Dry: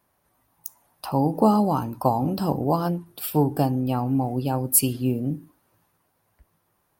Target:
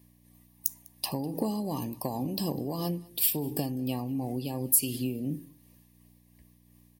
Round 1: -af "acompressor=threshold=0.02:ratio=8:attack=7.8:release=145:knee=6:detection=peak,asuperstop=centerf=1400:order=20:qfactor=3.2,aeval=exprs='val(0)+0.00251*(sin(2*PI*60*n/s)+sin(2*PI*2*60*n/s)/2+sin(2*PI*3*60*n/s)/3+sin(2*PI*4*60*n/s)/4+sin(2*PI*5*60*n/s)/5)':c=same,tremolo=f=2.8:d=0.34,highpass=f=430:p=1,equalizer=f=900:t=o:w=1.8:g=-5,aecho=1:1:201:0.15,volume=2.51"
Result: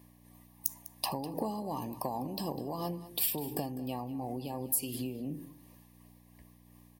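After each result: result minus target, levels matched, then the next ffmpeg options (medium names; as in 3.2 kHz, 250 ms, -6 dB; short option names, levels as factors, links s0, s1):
compression: peak gain reduction +8.5 dB; 1 kHz band +6.5 dB; echo-to-direct +8.5 dB
-af "acompressor=threshold=0.0631:ratio=8:attack=7.8:release=145:knee=6:detection=peak,asuperstop=centerf=1400:order=20:qfactor=3.2,aeval=exprs='val(0)+0.00251*(sin(2*PI*60*n/s)+sin(2*PI*2*60*n/s)/2+sin(2*PI*3*60*n/s)/3+sin(2*PI*4*60*n/s)/4+sin(2*PI*5*60*n/s)/5)':c=same,tremolo=f=2.8:d=0.34,highpass=f=430:p=1,equalizer=f=900:t=o:w=1.8:g=-5,aecho=1:1:201:0.15,volume=2.51"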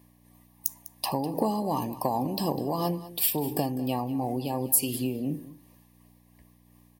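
1 kHz band +7.5 dB; echo-to-direct +8.5 dB
-af "acompressor=threshold=0.0631:ratio=8:attack=7.8:release=145:knee=6:detection=peak,asuperstop=centerf=1400:order=20:qfactor=3.2,aeval=exprs='val(0)+0.00251*(sin(2*PI*60*n/s)+sin(2*PI*2*60*n/s)/2+sin(2*PI*3*60*n/s)/3+sin(2*PI*4*60*n/s)/4+sin(2*PI*5*60*n/s)/5)':c=same,tremolo=f=2.8:d=0.34,highpass=f=430:p=1,equalizer=f=900:t=o:w=1.8:g=-15,aecho=1:1:201:0.15,volume=2.51"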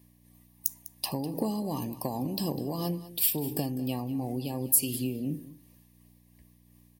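echo-to-direct +8.5 dB
-af "acompressor=threshold=0.0631:ratio=8:attack=7.8:release=145:knee=6:detection=peak,asuperstop=centerf=1400:order=20:qfactor=3.2,aeval=exprs='val(0)+0.00251*(sin(2*PI*60*n/s)+sin(2*PI*2*60*n/s)/2+sin(2*PI*3*60*n/s)/3+sin(2*PI*4*60*n/s)/4+sin(2*PI*5*60*n/s)/5)':c=same,tremolo=f=2.8:d=0.34,highpass=f=430:p=1,equalizer=f=900:t=o:w=1.8:g=-15,aecho=1:1:201:0.0562,volume=2.51"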